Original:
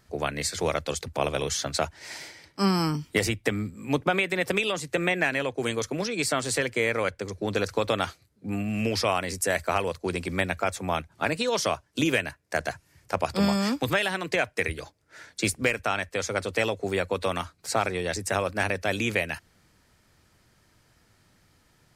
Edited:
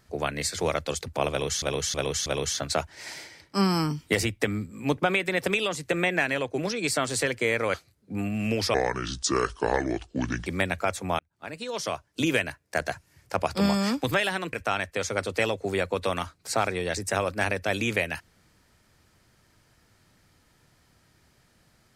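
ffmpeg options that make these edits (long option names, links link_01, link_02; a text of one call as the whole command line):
ffmpeg -i in.wav -filter_complex "[0:a]asplit=10[link_01][link_02][link_03][link_04][link_05][link_06][link_07][link_08][link_09][link_10];[link_01]atrim=end=1.622[link_11];[link_02]atrim=start=1.298:end=1.622[link_12];[link_03]atrim=start=1.298:end=1.622[link_13];[link_04]atrim=start=1.298:end=5.622[link_14];[link_05]atrim=start=5.928:end=7.092[link_15];[link_06]atrim=start=8.078:end=9.084[link_16];[link_07]atrim=start=9.08:end=10.25,asetpts=PTS-STARTPTS,asetrate=29988,aresample=44100[link_17];[link_08]atrim=start=10.246:end=10.98,asetpts=PTS-STARTPTS,afade=type=out:start_time=0.73:duration=0.004:curve=hsin[link_18];[link_09]atrim=start=10.98:end=14.322,asetpts=PTS-STARTPTS,afade=type=in:duration=1.16[link_19];[link_10]atrim=start=15.718[link_20];[link_11][link_12]acrossfade=duration=0.004:curve1=hsin:curve2=hsin[link_21];[link_21][link_13]acrossfade=duration=0.004:curve1=hsin:curve2=hsin[link_22];[link_22][link_14]acrossfade=duration=0.004:curve1=hsin:curve2=hsin[link_23];[link_23][link_15]acrossfade=duration=0.004:curve1=hsin:curve2=hsin[link_24];[link_24][link_16]acrossfade=duration=0.004:curve1=hsin:curve2=hsin[link_25];[link_25][link_17]acrossfade=duration=0.004:curve1=hsin:curve2=hsin[link_26];[link_18][link_19]concat=n=2:v=0:a=1[link_27];[link_26][link_27]acrossfade=duration=0.004:curve1=hsin:curve2=hsin[link_28];[link_28][link_20]acrossfade=duration=0.004:curve1=hsin:curve2=hsin" out.wav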